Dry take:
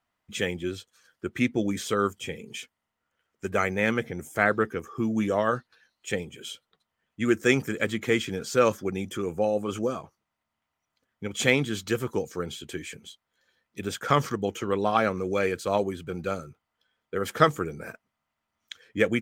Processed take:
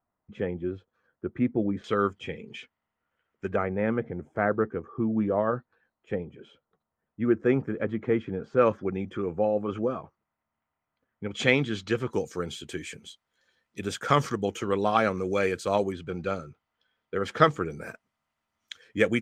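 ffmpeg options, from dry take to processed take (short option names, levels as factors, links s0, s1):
-af "asetnsamples=n=441:p=0,asendcmd='1.84 lowpass f 2700;3.56 lowpass f 1100;8.59 lowpass f 1900;11.31 lowpass f 4200;12.13 lowpass f 10000;15.92 lowpass f 4900;17.7 lowpass f 11000',lowpass=1000"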